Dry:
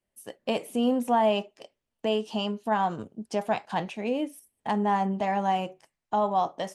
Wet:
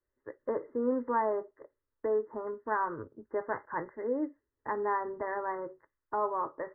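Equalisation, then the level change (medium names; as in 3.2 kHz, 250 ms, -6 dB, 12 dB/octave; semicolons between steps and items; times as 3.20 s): brick-wall FIR low-pass 2.1 kHz; peaking EQ 570 Hz -2.5 dB; static phaser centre 730 Hz, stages 6; +1.0 dB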